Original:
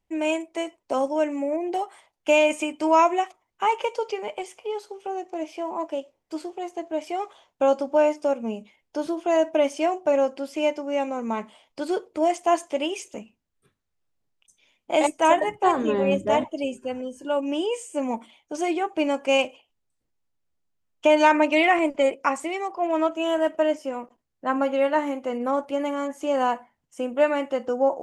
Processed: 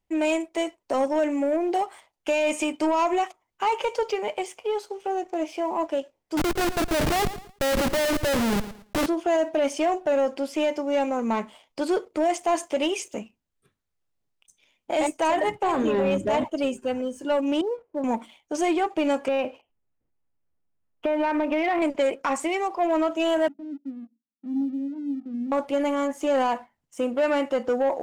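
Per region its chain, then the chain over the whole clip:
6.37–9.06 Schmitt trigger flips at -38 dBFS + feedback echo 0.112 s, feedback 33%, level -14 dB
17.61–18.04 G.711 law mismatch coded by A + LPF 1100 Hz 24 dB/oct + compressor 1.5:1, threshold -35 dBFS
19.28–21.82 LPF 2800 Hz 24 dB/oct + tilt shelf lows +3.5 dB, about 1400 Hz + compressor, threshold -23 dBFS
23.48–25.52 Butterworth band-pass 240 Hz, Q 3.5 + doubler 14 ms -9 dB
whole clip: limiter -16 dBFS; sample leveller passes 1

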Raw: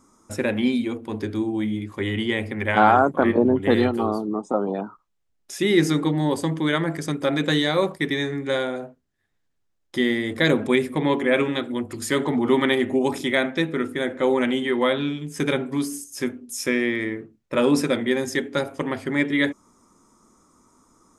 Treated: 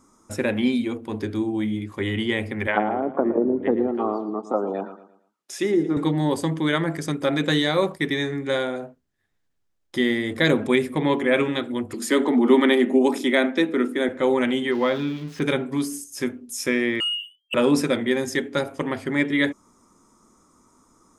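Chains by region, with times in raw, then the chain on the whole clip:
2.67–5.97 treble ducked by the level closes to 430 Hz, closed at -13.5 dBFS + HPF 260 Hz + feedback echo 0.114 s, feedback 38%, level -13.5 dB
11.94–14.09 steep high-pass 200 Hz 48 dB/oct + low shelf 360 Hz +6.5 dB
14.71–15.42 switching spikes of -20.5 dBFS + air absorption 270 m
17–17.54 spectral contrast raised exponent 3.1 + inverted band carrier 3200 Hz + sample leveller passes 1
whole clip: dry

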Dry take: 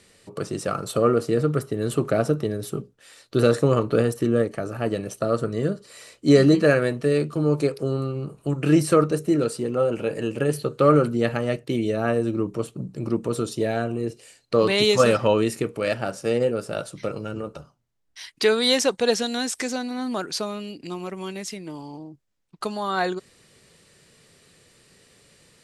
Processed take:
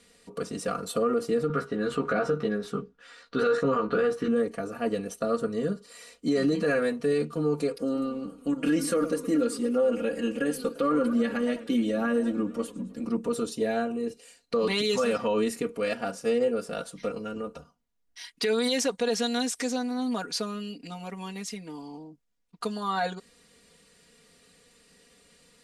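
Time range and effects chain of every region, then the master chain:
1.48–4.28 LPF 4900 Hz + bell 1400 Hz +9 dB 0.78 oct + doubler 15 ms -3 dB
7.75–13.05 comb 3.6 ms + warbling echo 0.104 s, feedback 61%, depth 199 cents, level -18.5 dB
whole clip: comb 4.2 ms, depth 92%; limiter -11 dBFS; gain -6 dB

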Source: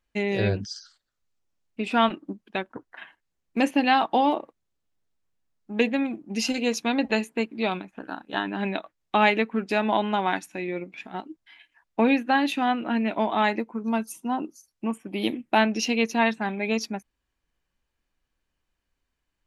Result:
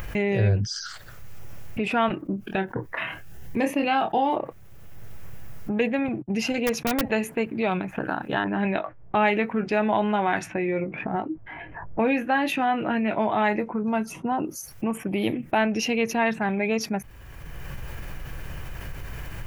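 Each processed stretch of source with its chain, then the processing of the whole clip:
2.24–4.36 doubler 26 ms -7 dB + cascading phaser rising 1.3 Hz
6.08–7.03 gate -44 dBFS, range -60 dB + high shelf 5500 Hz -7.5 dB + wrapped overs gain 14 dB
8.44–14.32 doubler 19 ms -10.5 dB + low-pass opened by the level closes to 510 Hz, open at -21 dBFS
whole clip: upward compressor, threshold -25 dBFS; graphic EQ 125/250/1000/4000/8000 Hz +10/-9/-4/-11/-9 dB; fast leveller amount 50%

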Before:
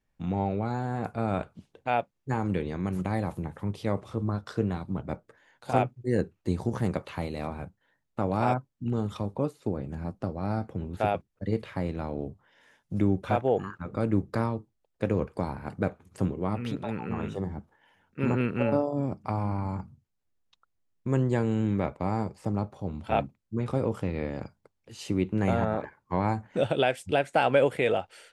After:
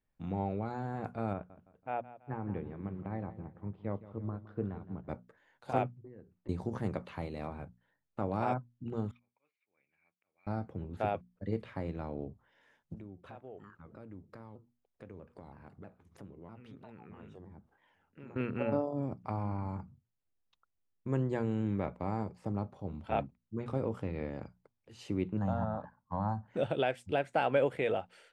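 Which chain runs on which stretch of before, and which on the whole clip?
1.33–5.08 air absorption 500 m + feedback echo 0.165 s, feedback 42%, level -11 dB + upward expander, over -41 dBFS
5.99–6.49 compressor 20:1, threshold -39 dBFS + air absorption 500 m
9.11–10.47 auto swell 0.139 s + band-pass 2300 Hz, Q 15
12.94–18.36 compressor 2.5:1, threshold -47 dBFS + shaped vibrato saw down 3.1 Hz, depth 160 cents
25.37–26.48 Bessel low-pass 4700 Hz + bell 210 Hz +4 dB 2 oct + fixed phaser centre 930 Hz, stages 4
whole clip: high shelf 4800 Hz -10 dB; notches 60/120/180/240 Hz; gain -6 dB

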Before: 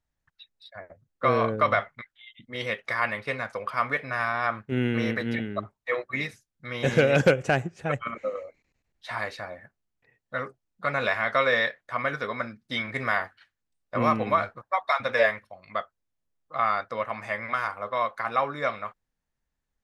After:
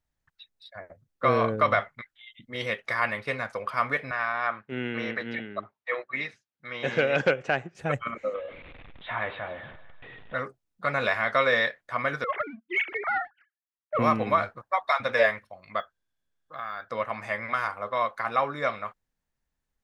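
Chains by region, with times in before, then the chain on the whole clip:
4.11–7.75 BPF 110–3700 Hz + low shelf 390 Hz -10 dB
8.34–10.35 zero-crossing step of -39.5 dBFS + Chebyshev low-pass 3600 Hz, order 6 + split-band echo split 840 Hz, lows 95 ms, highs 0.155 s, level -15.5 dB
12.24–13.99 sine-wave speech + sample leveller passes 1 + air absorption 310 m
15.8–16.9 compressor 2:1, threshold -43 dBFS + small resonant body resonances 1600/3400 Hz, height 15 dB, ringing for 25 ms + decimation joined by straight lines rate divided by 2×
whole clip: dry

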